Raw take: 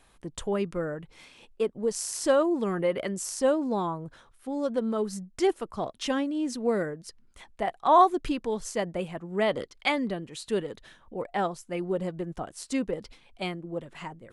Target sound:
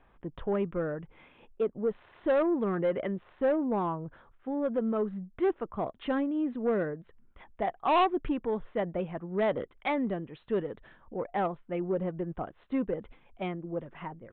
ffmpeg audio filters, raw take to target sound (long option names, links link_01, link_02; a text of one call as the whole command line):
ffmpeg -i in.wav -af "lowpass=1800,aresample=8000,asoftclip=type=tanh:threshold=-20dB,aresample=44100" out.wav